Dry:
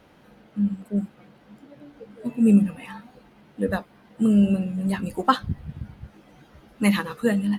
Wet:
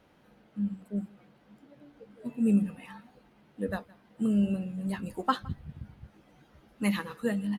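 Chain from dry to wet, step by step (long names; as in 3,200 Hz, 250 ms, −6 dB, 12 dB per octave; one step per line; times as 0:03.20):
single-tap delay 165 ms −24 dB
level −8 dB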